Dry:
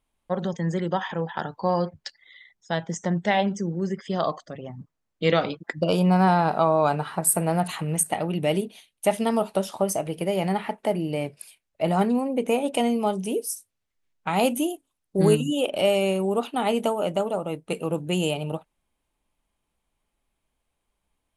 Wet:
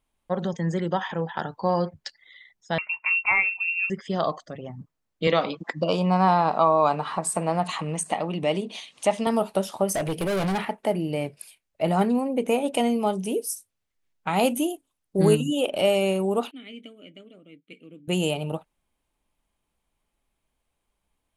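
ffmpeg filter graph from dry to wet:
ffmpeg -i in.wav -filter_complex "[0:a]asettb=1/sr,asplit=3[link_01][link_02][link_03];[link_01]atrim=end=2.784[link_04];[link_02]atrim=start=2.78:end=3.9,asetpts=PTS-STARTPTS,afade=type=in:duration=0.004:curve=qsin,afade=type=out:start_time=1.116:duration=0.004:curve=qsin,asplit=2[link_05][link_06];[link_06]adelay=18,volume=-12dB[link_07];[link_05][link_07]amix=inputs=2:normalize=0,atrim=end_sample=49392,lowpass=frequency=2500:width_type=q:width=0.5098,lowpass=frequency=2500:width_type=q:width=0.6013,lowpass=frequency=2500:width_type=q:width=0.9,lowpass=frequency=2500:width_type=q:width=2.563,afreqshift=-2900[link_08];[link_03]atrim=start=3.896[link_09];[link_04][link_08]acrossfade=duration=0.004:curve1=hsin:curve2=qsin[link_10];[link_10][link_09]acrossfade=duration=0.004:curve1=qsin:curve2=hsin,asettb=1/sr,asplit=3[link_11][link_12][link_13];[link_11]atrim=end=5.274[link_14];[link_12]atrim=start=5.27:end=9.27,asetpts=PTS-STARTPTS,afade=type=in:duration=0.004:curve=qsin,afade=type=out:start_time=3.996:duration=0.004:curve=qsin,highpass=190,equalizer=frequency=380:width_type=q:width=4:gain=-4,equalizer=frequency=1100:width_type=q:width=4:gain=7,equalizer=frequency=1500:width_type=q:width=4:gain=-6,lowpass=frequency=7600:width=0.5412,lowpass=frequency=7600:width=1.3066,acompressor=mode=upward:threshold=-24dB:ratio=2.5:attack=3.2:release=140:knee=2.83:detection=peak[link_15];[link_13]atrim=start=9.266[link_16];[link_14][link_15]acrossfade=duration=0.004:curve1=hsin:curve2=qsin[link_17];[link_17][link_16]acrossfade=duration=0.004:curve1=qsin:curve2=hsin,asettb=1/sr,asplit=3[link_18][link_19][link_20];[link_18]atrim=end=9.944[link_21];[link_19]atrim=start=9.94:end=10.65,asetpts=PTS-STARTPTS,afade=type=in:duration=0.004:curve=qsin,afade=type=out:start_time=0.706:duration=0.004:curve=qsin,acontrast=53,asoftclip=type=hard:threshold=-23dB[link_22];[link_20]atrim=start=10.646[link_23];[link_21][link_22]acrossfade=duration=0.004:curve1=hsin:curve2=qsin[link_24];[link_24][link_23]acrossfade=duration=0.004:curve1=qsin:curve2=hsin,asettb=1/sr,asplit=3[link_25][link_26][link_27];[link_25]atrim=end=16.514[link_28];[link_26]atrim=start=16.51:end=18.08,asetpts=PTS-STARTPTS,afade=type=in:duration=0.004:curve=qsin,afade=type=out:start_time=1.566:duration=0.004:curve=qsin,asplit=3[link_29][link_30][link_31];[link_29]bandpass=frequency=270:width_type=q:width=8,volume=0dB[link_32];[link_30]bandpass=frequency=2290:width_type=q:width=8,volume=-6dB[link_33];[link_31]bandpass=frequency=3010:width_type=q:width=8,volume=-9dB[link_34];[link_32][link_33][link_34]amix=inputs=3:normalize=0,equalizer=frequency=260:width=1.5:gain=-8[link_35];[link_27]atrim=start=18.076[link_36];[link_28][link_35]acrossfade=duration=0.004:curve1=hsin:curve2=qsin[link_37];[link_37][link_36]acrossfade=duration=0.004:curve1=qsin:curve2=hsin" out.wav

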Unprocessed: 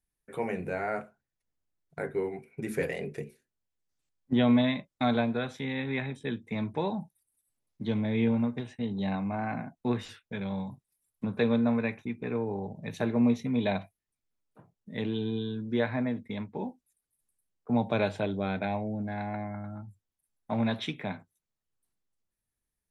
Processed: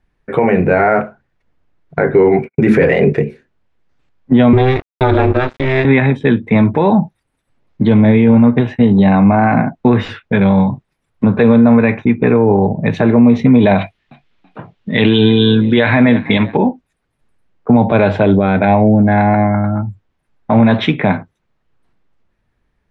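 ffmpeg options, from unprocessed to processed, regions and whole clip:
ffmpeg -i in.wav -filter_complex "[0:a]asettb=1/sr,asplit=3[link_01][link_02][link_03];[link_01]atrim=end=2.124[link_04];[link_02]atrim=start=2.12:end=3.13,asetpts=PTS-STARTPTS,afade=type=in:duration=0.004:curve=qsin,afade=type=out:start_time=1.006:duration=0.004:curve=qsin,agate=range=-51dB:threshold=-57dB:ratio=16:release=100:detection=peak,highpass=59,acontrast=34[link_05];[link_03]atrim=start=3.126[link_06];[link_04][link_05]acrossfade=duration=0.004:curve1=hsin:curve2=qsin[link_07];[link_07][link_06]acrossfade=duration=0.004:curve1=qsin:curve2=hsin,asettb=1/sr,asplit=3[link_08][link_09][link_10];[link_08]atrim=end=4.534[link_11];[link_09]atrim=start=4.53:end=5.85,asetpts=PTS-STARTPTS,afade=type=in:duration=0.004:curve=qsin,afade=type=out:start_time=1.316:duration=0.004:curve=qsin,aeval=exprs='val(0)*sin(2*PI*130*n/s)':channel_layout=same,aeval=exprs='sgn(val(0))*max(abs(val(0))-0.00501,0)':channel_layout=same[link_12];[link_10]atrim=start=5.846[link_13];[link_11][link_12]acrossfade=duration=0.004:curve1=hsin:curve2=qsin[link_14];[link_14][link_13]acrossfade=duration=0.004:curve1=qsin:curve2=hsin,asettb=1/sr,asplit=3[link_15][link_16][link_17];[link_15]atrim=end=13.784[link_18];[link_16]atrim=start=13.78:end=16.57,asetpts=PTS-STARTPTS,afade=type=in:duration=0.004:curve=qsin,afade=type=out:start_time=2.786:duration=0.004:curve=qsin,equalizer=frequency=3300:width_type=o:width=1.7:gain=14,asplit=3[link_19][link_20][link_21];[link_20]adelay=330,afreqshift=43,volume=-23dB[link_22];[link_21]adelay=660,afreqshift=86,volume=-32.6dB[link_23];[link_19][link_22][link_23]amix=inputs=3:normalize=0,atrim=end_sample=123039[link_24];[link_17]atrim=start=16.566[link_25];[link_18][link_24]acrossfade=duration=0.004:curve1=hsin:curve2=qsin[link_26];[link_26][link_25]acrossfade=duration=0.004:curve1=qsin:curve2=hsin,lowpass=2200,alimiter=level_in=25dB:limit=-1dB:release=50:level=0:latency=1,volume=-1dB" out.wav

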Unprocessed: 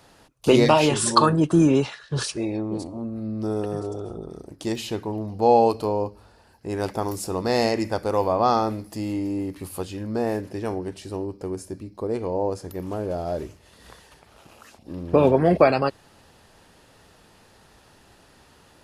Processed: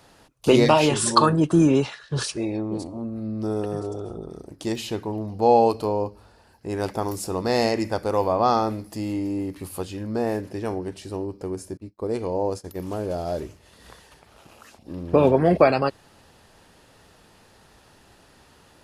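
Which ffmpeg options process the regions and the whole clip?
ffmpeg -i in.wav -filter_complex "[0:a]asettb=1/sr,asplit=3[link_01][link_02][link_03];[link_01]atrim=end=11.774[link_04];[link_02]atrim=start=11.77:end=13.4,asetpts=PTS-STARTPTS,afade=type=in:duration=0.004:curve=qsin,afade=type=out:start_time=1.626:duration=0.004:curve=qsin,agate=range=-33dB:threshold=-34dB:ratio=3:release=100:detection=peak,adynamicequalizer=threshold=0.00501:dfrequency=2800:dqfactor=0.7:tfrequency=2800:tqfactor=0.7:attack=5:release=100:ratio=0.375:range=2.5:mode=boostabove:tftype=highshelf[link_05];[link_03]atrim=start=13.396[link_06];[link_04][link_05]acrossfade=duration=0.004:curve1=hsin:curve2=qsin[link_07];[link_07][link_06]acrossfade=duration=0.004:curve1=qsin:curve2=hsin" out.wav

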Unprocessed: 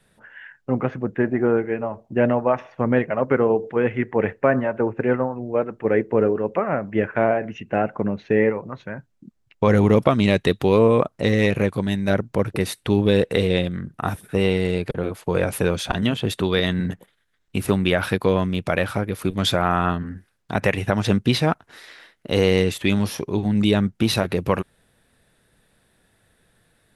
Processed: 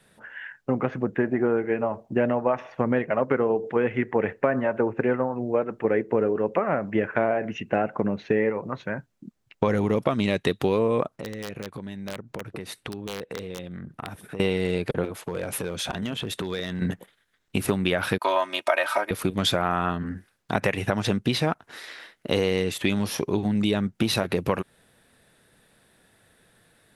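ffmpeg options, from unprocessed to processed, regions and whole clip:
ffmpeg -i in.wav -filter_complex "[0:a]asettb=1/sr,asplit=3[link_01][link_02][link_03];[link_01]atrim=end=11.164[link_04];[link_02]atrim=start=11.16:end=14.4,asetpts=PTS-STARTPTS,afade=type=in:duration=0.004:curve=qsin,afade=type=out:start_time=3.236:duration=0.004:curve=qsin,aeval=exprs='(mod(2.11*val(0)+1,2)-1)/2.11':channel_layout=same,highshelf=frequency=4200:gain=-6.5,acompressor=threshold=-34dB:ratio=6:attack=3.2:release=140:knee=1:detection=peak[link_05];[link_03]atrim=start=14.396[link_06];[link_04][link_05]acrossfade=duration=0.004:curve1=hsin:curve2=qsin[link_07];[link_07][link_06]acrossfade=duration=0.004:curve1=qsin:curve2=hsin,asettb=1/sr,asplit=3[link_08][link_09][link_10];[link_08]atrim=end=15.054[link_11];[link_09]atrim=start=15.05:end=16.82,asetpts=PTS-STARTPTS,afade=type=in:duration=0.004:curve=qsin,afade=type=out:start_time=1.766:duration=0.004:curve=qsin,bandreject=frequency=4600:width=20,acompressor=threshold=-28dB:ratio=5:attack=3.2:release=140:knee=1:detection=peak,asoftclip=type=hard:threshold=-23.5dB[link_12];[link_10]atrim=start=16.816[link_13];[link_11][link_12]acrossfade=duration=0.004:curve1=hsin:curve2=qsin[link_14];[link_14][link_13]acrossfade=duration=0.004:curve1=qsin:curve2=hsin,asettb=1/sr,asplit=3[link_15][link_16][link_17];[link_15]atrim=end=18.184[link_18];[link_16]atrim=start=18.18:end=19.11,asetpts=PTS-STARTPTS,afade=type=in:duration=0.004:curve=qsin,afade=type=out:start_time=0.926:duration=0.004:curve=qsin,agate=range=-33dB:threshold=-37dB:ratio=3:release=100:detection=peak,highpass=frequency=770:width_type=q:width=1.6,aecho=1:1:3.2:0.99,atrim=end_sample=41013[link_19];[link_17]atrim=start=19.106[link_20];[link_18][link_19]acrossfade=duration=0.004:curve1=hsin:curve2=qsin[link_21];[link_21][link_20]acrossfade=duration=0.004:curve1=qsin:curve2=hsin,acompressor=threshold=-22dB:ratio=4,lowshelf=frequency=83:gain=-10.5,volume=3dB" out.wav

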